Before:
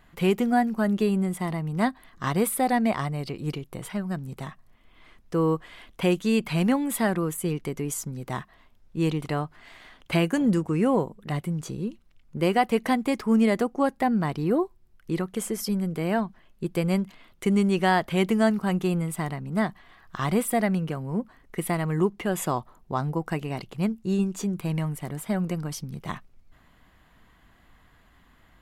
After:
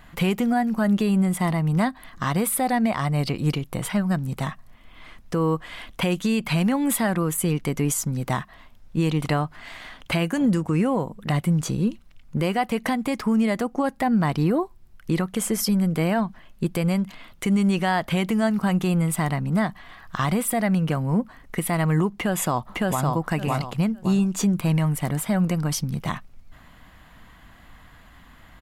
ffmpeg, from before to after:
-filter_complex "[0:a]asplit=2[a][b];[b]afade=t=in:st=22.13:d=0.01,afade=t=out:st=23.05:d=0.01,aecho=0:1:560|1120|1680:0.794328|0.158866|0.0317731[c];[a][c]amix=inputs=2:normalize=0,equalizer=f=390:w=3:g=-6.5,alimiter=limit=-22.5dB:level=0:latency=1:release=199,volume=9dB"

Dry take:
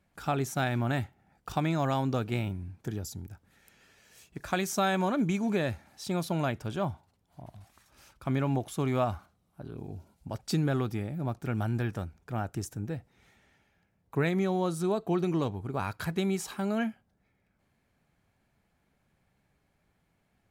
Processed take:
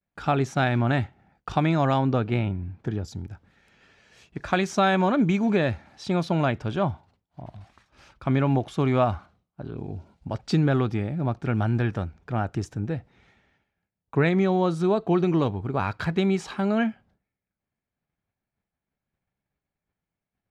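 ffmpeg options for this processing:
-filter_complex "[0:a]asettb=1/sr,asplit=3[a][b][c];[a]atrim=end=1.984[d];[b]atrim=start=1.98:end=3.08,asetpts=PTS-STARTPTS,afade=t=in:d=0.004:c=qsin,afade=t=out:st=1.096:d=0.004:c=qsin,highshelf=f=4.3k:g=-9[e];[c]atrim=start=3.076[f];[d][e]acrossfade=d=0.004:c1=hsin:c2=qsin[g];[g][f]acrossfade=d=0.004:c1=qsin:c2=hsin,lowpass=4.2k,agate=range=-33dB:threshold=-59dB:ratio=3:detection=peak,volume=6.5dB"

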